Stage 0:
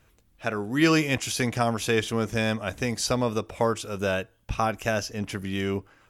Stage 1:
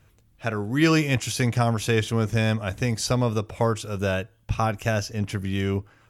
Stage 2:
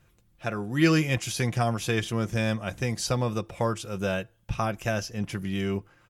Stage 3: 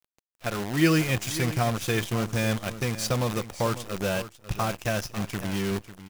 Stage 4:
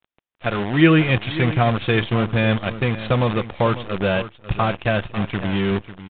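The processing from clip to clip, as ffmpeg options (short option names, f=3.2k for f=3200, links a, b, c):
-af "equalizer=f=110:t=o:w=1.1:g=8.5"
-af "aecho=1:1:5.7:0.41,volume=-3.5dB"
-af "acrusher=bits=6:dc=4:mix=0:aa=0.000001,aecho=1:1:546:0.211"
-af "aresample=8000,aresample=44100,volume=7.5dB"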